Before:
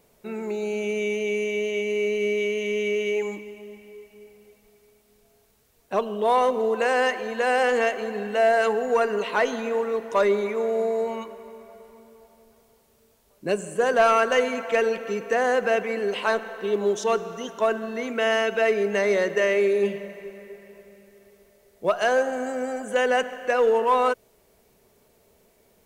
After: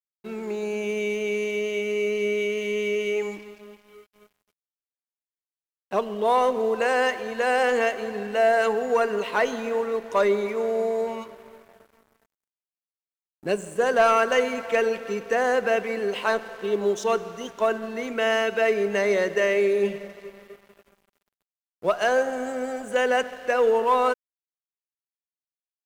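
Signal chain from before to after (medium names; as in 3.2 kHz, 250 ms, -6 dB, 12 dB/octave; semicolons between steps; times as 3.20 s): crossover distortion -47 dBFS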